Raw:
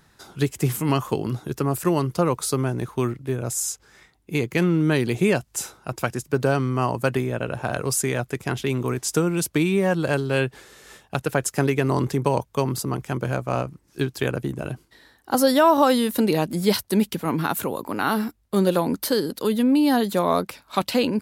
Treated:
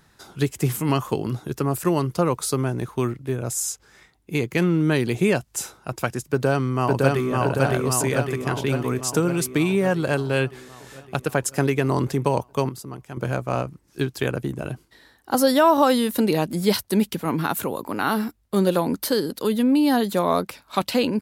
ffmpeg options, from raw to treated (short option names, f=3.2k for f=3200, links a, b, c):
-filter_complex "[0:a]asplit=2[a][b];[b]afade=t=in:st=6.22:d=0.01,afade=t=out:st=7.32:d=0.01,aecho=0:1:560|1120|1680|2240|2800|3360|3920|4480|5040|5600|6160:0.891251|0.579313|0.376554|0.24476|0.159094|0.103411|0.0672172|0.0436912|0.0283992|0.0184595|0.0119987[c];[a][c]amix=inputs=2:normalize=0,asplit=3[d][e][f];[d]atrim=end=12.692[g];[e]atrim=start=12.688:end=13.172,asetpts=PTS-STARTPTS,volume=-9.5dB[h];[f]atrim=start=13.168[i];[g][h]acrossfade=d=0.004:c1=hsin:c2=hsin[j];[j][i]acrossfade=d=0.004:c1=hsin:c2=hsin"